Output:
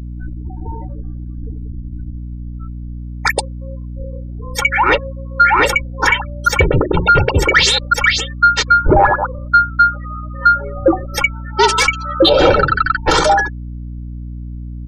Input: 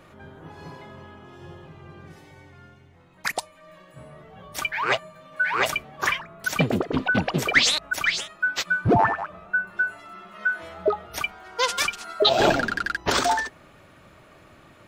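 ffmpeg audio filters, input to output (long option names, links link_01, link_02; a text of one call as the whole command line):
ffmpeg -i in.wav -filter_complex "[0:a]afreqshift=-87,bandreject=frequency=60:width_type=h:width=6,bandreject=frequency=120:width_type=h:width=6,bandreject=frequency=180:width_type=h:width=6,bandreject=frequency=240:width_type=h:width=6,bandreject=frequency=300:width_type=h:width=6,bandreject=frequency=360:width_type=h:width=6,afftfilt=real='re*gte(hypot(re,im),0.0224)':imag='im*gte(hypot(re,im),0.0224)':win_size=1024:overlap=0.75,aecho=1:1:2.2:0.9,acrossover=split=160[link_01][link_02];[link_01]acompressor=threshold=-20dB:ratio=6[link_03];[link_03][link_02]amix=inputs=2:normalize=0,asplit=2[link_04][link_05];[link_05]alimiter=limit=-13dB:level=0:latency=1:release=51,volume=3dB[link_06];[link_04][link_06]amix=inputs=2:normalize=0,acontrast=27,aeval=exprs='val(0)+0.0631*(sin(2*PI*60*n/s)+sin(2*PI*2*60*n/s)/2+sin(2*PI*3*60*n/s)/3+sin(2*PI*4*60*n/s)/4+sin(2*PI*5*60*n/s)/5)':channel_layout=same,afftdn=noise_reduction=14:noise_floor=-23,adynamicequalizer=threshold=0.0794:dfrequency=1800:dqfactor=0.7:tfrequency=1800:tqfactor=0.7:attack=5:release=100:ratio=0.375:range=1.5:mode=cutabove:tftype=highshelf,volume=-1.5dB" out.wav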